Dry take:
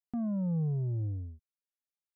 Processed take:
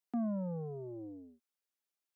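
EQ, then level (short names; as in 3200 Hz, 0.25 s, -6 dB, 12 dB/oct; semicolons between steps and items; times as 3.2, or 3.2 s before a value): HPF 240 Hz 24 dB/oct; +3.0 dB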